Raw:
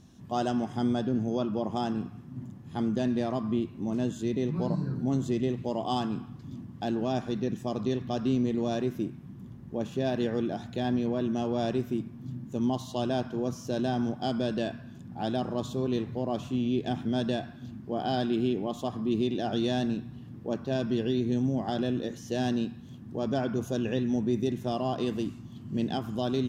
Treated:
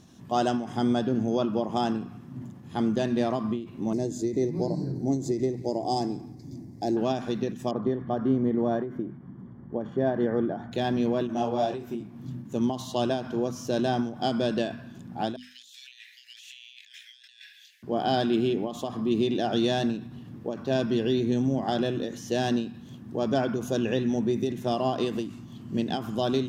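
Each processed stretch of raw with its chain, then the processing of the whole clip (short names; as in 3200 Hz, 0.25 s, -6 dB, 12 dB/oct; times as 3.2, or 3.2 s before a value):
3.93–6.97 EQ curve 130 Hz 0 dB, 220 Hz -5 dB, 320 Hz +4 dB, 520 Hz -2 dB, 780 Hz -1 dB, 1300 Hz -21 dB, 2100 Hz -3 dB, 3000 Hz -21 dB, 4700 Hz +4 dB, 11000 Hz 0 dB + echo 0.175 s -22 dB
7.71–10.72 polynomial smoothing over 41 samples + notches 50/100/150 Hz
11.27–12.16 bell 790 Hz +7 dB 0.73 oct + detuned doubles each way 34 cents
15.36–17.83 steep high-pass 1800 Hz 72 dB/oct + negative-ratio compressor -55 dBFS
whole clip: low shelf 110 Hz -8.5 dB; notches 50/100/150/200/250 Hz; ending taper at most 110 dB/s; gain +5 dB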